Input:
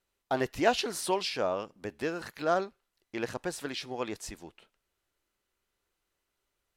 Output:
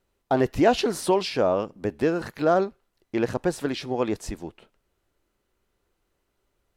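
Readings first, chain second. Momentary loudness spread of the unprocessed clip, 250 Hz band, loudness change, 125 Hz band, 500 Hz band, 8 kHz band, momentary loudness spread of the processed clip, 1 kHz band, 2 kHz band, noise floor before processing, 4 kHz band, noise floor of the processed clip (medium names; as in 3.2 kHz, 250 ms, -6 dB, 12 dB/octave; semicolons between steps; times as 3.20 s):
14 LU, +10.5 dB, +7.5 dB, +11.5 dB, +8.5 dB, +1.5 dB, 11 LU, +5.5 dB, +2.5 dB, -83 dBFS, +2.0 dB, -76 dBFS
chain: tilt shelf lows +5.5 dB; in parallel at +2 dB: peak limiter -20 dBFS, peak gain reduction 9 dB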